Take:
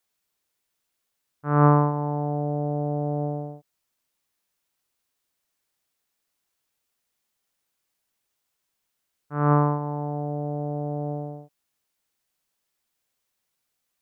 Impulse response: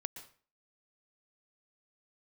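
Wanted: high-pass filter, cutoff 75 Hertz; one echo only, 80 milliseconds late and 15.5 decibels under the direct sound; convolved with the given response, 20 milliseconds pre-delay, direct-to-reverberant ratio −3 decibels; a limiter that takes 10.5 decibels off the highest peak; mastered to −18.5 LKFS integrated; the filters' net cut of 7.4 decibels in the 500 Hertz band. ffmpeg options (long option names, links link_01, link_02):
-filter_complex "[0:a]highpass=75,equalizer=frequency=500:width_type=o:gain=-9,alimiter=limit=-17.5dB:level=0:latency=1,aecho=1:1:80:0.168,asplit=2[link_01][link_02];[1:a]atrim=start_sample=2205,adelay=20[link_03];[link_02][link_03]afir=irnorm=-1:irlink=0,volume=4.5dB[link_04];[link_01][link_04]amix=inputs=2:normalize=0,volume=5.5dB"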